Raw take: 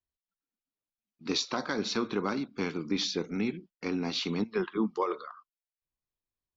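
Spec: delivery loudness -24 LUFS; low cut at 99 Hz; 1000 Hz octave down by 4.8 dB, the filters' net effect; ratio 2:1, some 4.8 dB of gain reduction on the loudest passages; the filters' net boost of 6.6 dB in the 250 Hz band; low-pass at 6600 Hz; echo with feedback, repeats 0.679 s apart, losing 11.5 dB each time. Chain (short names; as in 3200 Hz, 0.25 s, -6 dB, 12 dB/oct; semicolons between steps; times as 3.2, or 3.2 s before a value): HPF 99 Hz; LPF 6600 Hz; bell 250 Hz +8.5 dB; bell 1000 Hz -6.5 dB; compressor 2:1, threshold -28 dBFS; feedback echo 0.679 s, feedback 27%, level -11.5 dB; gain +7.5 dB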